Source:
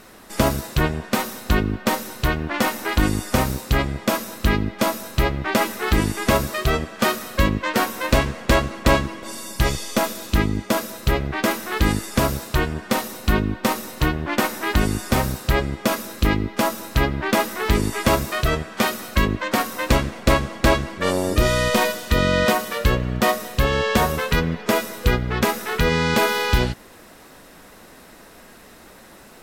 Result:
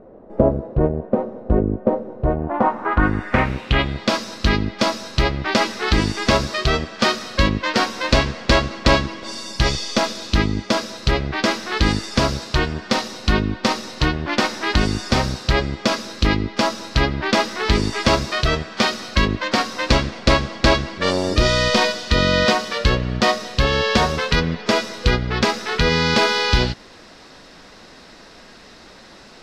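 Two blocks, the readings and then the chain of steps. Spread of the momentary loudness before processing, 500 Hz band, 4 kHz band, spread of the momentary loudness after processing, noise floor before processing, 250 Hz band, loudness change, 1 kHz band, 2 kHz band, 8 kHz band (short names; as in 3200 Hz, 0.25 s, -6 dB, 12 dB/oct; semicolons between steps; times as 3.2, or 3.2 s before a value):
5 LU, +1.5 dB, +6.0 dB, 5 LU, -46 dBFS, +1.0 dB, +2.0 dB, +1.5 dB, +2.0 dB, -1.5 dB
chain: low-pass sweep 550 Hz -> 4900 Hz, 2.19–4.15; gain +1 dB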